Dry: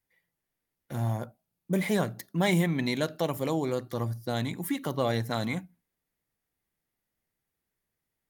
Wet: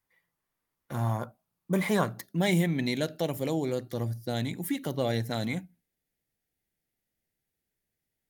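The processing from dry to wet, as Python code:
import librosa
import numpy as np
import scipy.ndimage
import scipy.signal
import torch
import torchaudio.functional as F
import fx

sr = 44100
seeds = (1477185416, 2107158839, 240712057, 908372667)

y = fx.peak_eq(x, sr, hz=1100.0, db=fx.steps((0.0, 8.5), (2.24, -9.5)), octaves=0.66)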